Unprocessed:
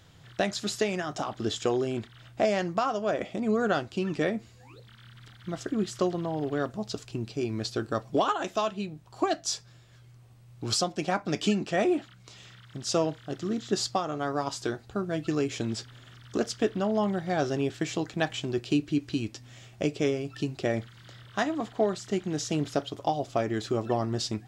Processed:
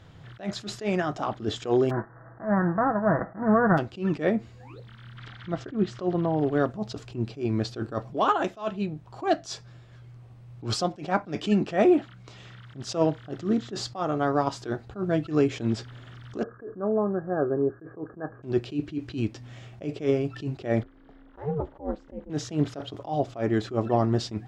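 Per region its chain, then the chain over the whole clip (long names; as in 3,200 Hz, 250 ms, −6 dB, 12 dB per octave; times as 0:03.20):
0:01.89–0:03.77: spectral envelope flattened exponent 0.3 + Butterworth low-pass 1,800 Hz 96 dB per octave + comb filter 6.1 ms, depth 43%
0:05.18–0:06.39: high-frequency loss of the air 99 metres + one half of a high-frequency compander encoder only
0:16.43–0:18.43: Chebyshev low-pass with heavy ripple 1,700 Hz, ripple 9 dB + one half of a high-frequency compander encoder only
0:20.83–0:22.30: resonant band-pass 340 Hz, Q 0.65 + ring modulation 150 Hz
whole clip: low-pass filter 1,600 Hz 6 dB per octave; level that may rise only so fast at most 200 dB per second; level +6.5 dB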